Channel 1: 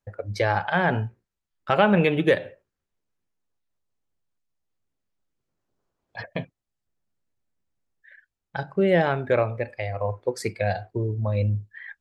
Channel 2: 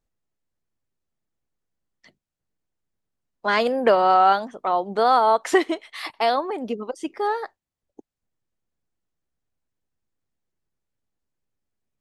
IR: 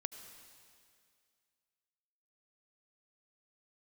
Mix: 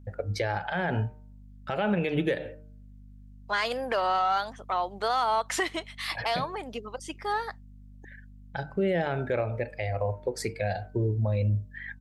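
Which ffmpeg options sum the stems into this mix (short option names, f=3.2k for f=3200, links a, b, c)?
-filter_complex "[0:a]equalizer=f=1.1k:t=o:w=0.3:g=-7.5,aeval=exprs='val(0)+0.00398*(sin(2*PI*50*n/s)+sin(2*PI*2*50*n/s)/2+sin(2*PI*3*50*n/s)/3+sin(2*PI*4*50*n/s)/4+sin(2*PI*5*50*n/s)/5)':c=same,bandreject=f=152.1:t=h:w=4,bandreject=f=304.2:t=h:w=4,bandreject=f=456.3:t=h:w=4,bandreject=f=608.4:t=h:w=4,bandreject=f=760.5:t=h:w=4,bandreject=f=912.6:t=h:w=4,bandreject=f=1.0647k:t=h:w=4,bandreject=f=1.2168k:t=h:w=4,bandreject=f=1.3689k:t=h:w=4,bandreject=f=1.521k:t=h:w=4,volume=0.5dB[a];[1:a]tiltshelf=f=710:g=-7.5,asoftclip=type=tanh:threshold=-6.5dB,adelay=50,volume=-6dB[b];[a][b]amix=inputs=2:normalize=0,alimiter=limit=-18dB:level=0:latency=1:release=141"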